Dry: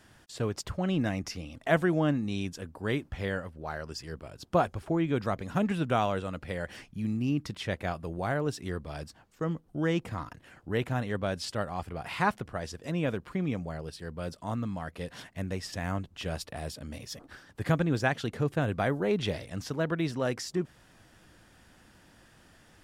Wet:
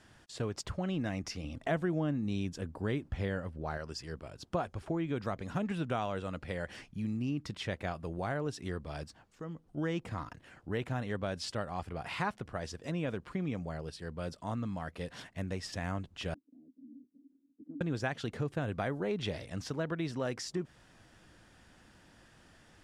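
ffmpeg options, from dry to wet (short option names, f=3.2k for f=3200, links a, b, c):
-filter_complex "[0:a]asettb=1/sr,asplit=3[a][b][c];[a]atrim=end=1.444[d];[b]atrim=start=1.44:end=3.78,asetpts=PTS-STARTPTS,afade=t=in:d=0.004:c=qsin,afade=t=out:st=2.336:d=0.004:c=qsin,lowshelf=f=500:g=6[e];[c]atrim=start=3.776[f];[d][e]acrossfade=d=0.004:c1=hsin:c2=qsin[g];[g][f]acrossfade=d=0.004:c1=qsin:c2=hsin,asplit=3[h][i][j];[h]afade=t=out:st=9.04:d=0.02[k];[i]acompressor=threshold=-43dB:ratio=2:attack=3.2:release=140:knee=1:detection=peak,afade=t=in:st=9.04:d=0.02,afade=t=out:st=9.76:d=0.02[l];[j]afade=t=in:st=9.76:d=0.02[m];[k][l][m]amix=inputs=3:normalize=0,asettb=1/sr,asplit=3[n][o][p];[n]atrim=end=16.344[q];[o]atrim=start=16.34:end=17.81,asetpts=PTS-STARTPTS,afade=t=in:d=0.004:c=qsin,afade=t=out:st=1.466:d=0.004:c=qsin,asuperpass=centerf=270:order=4:qfactor=5[r];[p]atrim=start=17.806[s];[q][r]acrossfade=d=0.004:c1=hsin:c2=qsin[t];[t][s]acrossfade=d=0.004:c1=qsin:c2=hsin,lowpass=9.5k,acompressor=threshold=-30dB:ratio=2.5,volume=-2dB"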